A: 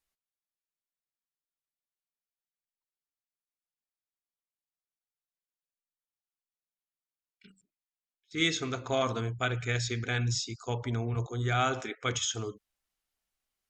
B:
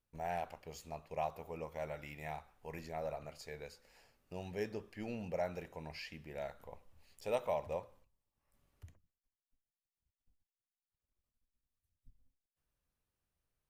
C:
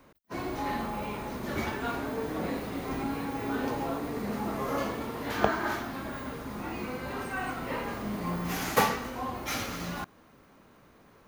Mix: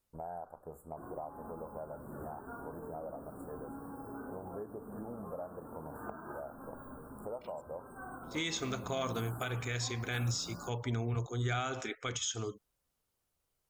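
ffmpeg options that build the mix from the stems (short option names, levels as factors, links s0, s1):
-filter_complex "[0:a]highshelf=f=6400:g=6,volume=0.794[s0];[1:a]equalizer=f=610:w=0.38:g=5.5,volume=1[s1];[2:a]adelay=650,volume=0.299[s2];[s1][s2]amix=inputs=2:normalize=0,asuperstop=centerf=3600:order=20:qfactor=0.57,acompressor=threshold=0.00891:ratio=4,volume=1[s3];[s0][s3]amix=inputs=2:normalize=0,alimiter=level_in=1.12:limit=0.0631:level=0:latency=1:release=148,volume=0.891"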